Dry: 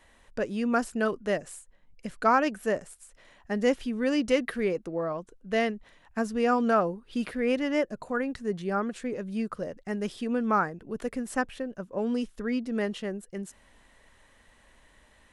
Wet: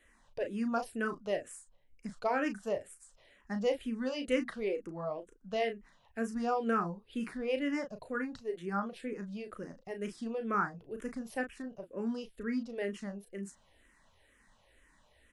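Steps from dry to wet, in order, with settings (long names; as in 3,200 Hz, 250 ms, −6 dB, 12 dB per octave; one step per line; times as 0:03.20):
double-tracking delay 35 ms −8 dB
frequency shifter mixed with the dry sound −2.1 Hz
level −4.5 dB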